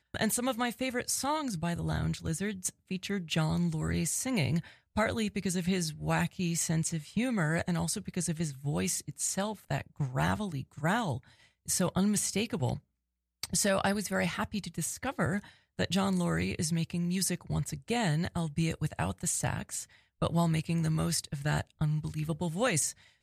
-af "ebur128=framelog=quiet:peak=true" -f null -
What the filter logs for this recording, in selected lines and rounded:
Integrated loudness:
  I:         -31.7 LUFS
  Threshold: -41.8 LUFS
Loudness range:
  LRA:         1.6 LU
  Threshold: -52.0 LUFS
  LRA low:   -32.7 LUFS
  LRA high:  -31.2 LUFS
True peak:
  Peak:      -17.0 dBFS